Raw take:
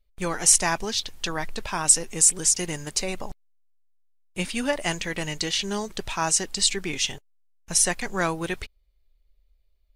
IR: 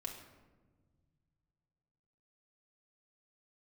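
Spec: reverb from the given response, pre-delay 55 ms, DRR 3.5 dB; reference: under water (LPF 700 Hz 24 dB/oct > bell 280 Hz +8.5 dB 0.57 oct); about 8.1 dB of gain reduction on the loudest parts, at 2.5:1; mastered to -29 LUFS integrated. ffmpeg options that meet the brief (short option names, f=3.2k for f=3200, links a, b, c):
-filter_complex "[0:a]acompressor=threshold=-24dB:ratio=2.5,asplit=2[a][b];[1:a]atrim=start_sample=2205,adelay=55[c];[b][c]afir=irnorm=-1:irlink=0,volume=-1.5dB[d];[a][d]amix=inputs=2:normalize=0,lowpass=f=700:w=0.5412,lowpass=f=700:w=1.3066,equalizer=f=280:t=o:w=0.57:g=8.5,volume=2dB"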